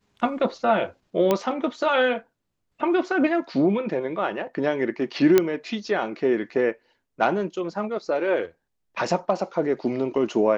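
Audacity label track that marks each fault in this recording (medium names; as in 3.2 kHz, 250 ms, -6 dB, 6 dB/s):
1.310000	1.310000	pop -8 dBFS
5.380000	5.380000	pop -4 dBFS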